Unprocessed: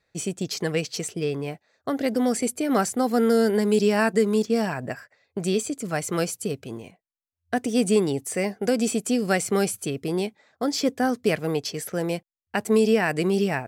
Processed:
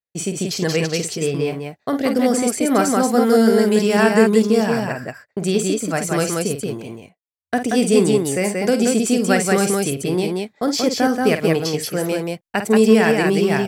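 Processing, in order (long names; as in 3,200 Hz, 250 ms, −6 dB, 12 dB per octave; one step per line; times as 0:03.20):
downward expander −43 dBFS
loudspeakers that aren't time-aligned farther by 17 metres −9 dB, 62 metres −3 dB
level +4.5 dB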